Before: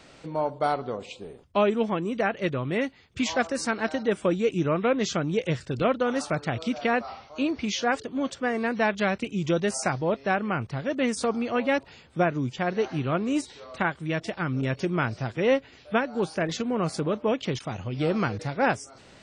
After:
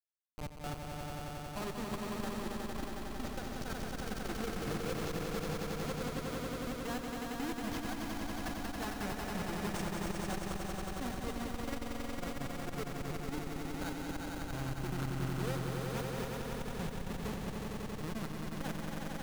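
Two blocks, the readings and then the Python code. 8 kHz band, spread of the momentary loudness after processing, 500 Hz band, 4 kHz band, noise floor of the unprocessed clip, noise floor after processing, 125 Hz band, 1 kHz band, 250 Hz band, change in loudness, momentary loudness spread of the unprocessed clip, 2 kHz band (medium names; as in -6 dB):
-8.0 dB, 4 LU, -15.5 dB, -9.0 dB, -52 dBFS, -43 dBFS, -8.5 dB, -12.5 dB, -11.5 dB, -12.5 dB, 6 LU, -14.0 dB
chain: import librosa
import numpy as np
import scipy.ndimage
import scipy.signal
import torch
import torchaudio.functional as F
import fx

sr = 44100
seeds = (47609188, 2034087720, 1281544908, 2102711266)

p1 = fx.bin_expand(x, sr, power=2.0)
p2 = fx.graphic_eq_31(p1, sr, hz=(100, 630, 3150), db=(-6, -12, -7))
p3 = fx.schmitt(p2, sr, flips_db=-30.0)
p4 = p3 + fx.echo_swell(p3, sr, ms=91, loudest=5, wet_db=-4.5, dry=0)
p5 = fx.transformer_sat(p4, sr, knee_hz=77.0)
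y = F.gain(torch.from_numpy(p5), -4.5).numpy()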